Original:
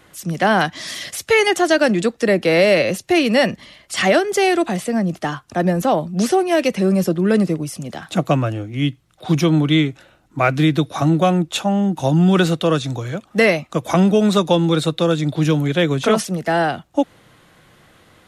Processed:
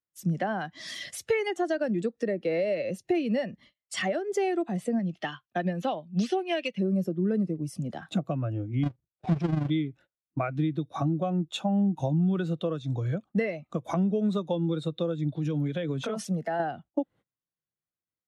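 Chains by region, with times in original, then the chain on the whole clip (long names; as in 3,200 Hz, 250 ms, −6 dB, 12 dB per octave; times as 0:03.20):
0:04.99–0:06.78: parametric band 3,100 Hz +14 dB 1.8 octaves + hard clipping −5.5 dBFS + expander for the loud parts, over −28 dBFS
0:08.83–0:09.70: each half-wave held at its own peak + amplitude modulation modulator 24 Hz, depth 50% + high-frequency loss of the air 68 metres
0:15.36–0:16.60: high-pass filter 140 Hz 6 dB per octave + parametric band 370 Hz −6 dB 0.25 octaves + downward compressor, threshold −20 dBFS
whole clip: noise gate −38 dBFS, range −22 dB; downward compressor 10 to 1, threshold −23 dBFS; every bin expanded away from the loudest bin 1.5 to 1; level −3.5 dB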